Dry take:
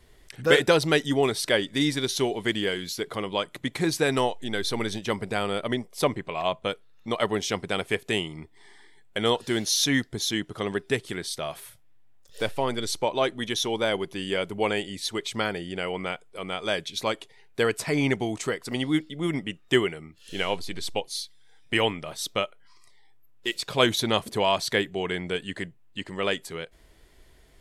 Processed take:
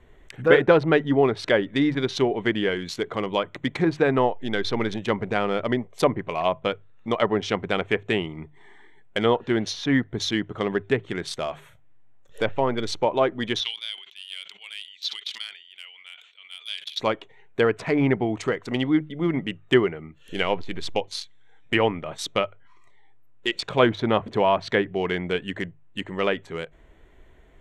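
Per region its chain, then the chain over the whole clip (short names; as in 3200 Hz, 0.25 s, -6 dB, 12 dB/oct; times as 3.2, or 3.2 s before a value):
13.6–17 Butterworth band-pass 3900 Hz, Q 1.7 + sustainer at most 65 dB/s
whole clip: Wiener smoothing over 9 samples; treble ducked by the level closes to 1800 Hz, closed at -21 dBFS; notches 50/100/150 Hz; gain +4 dB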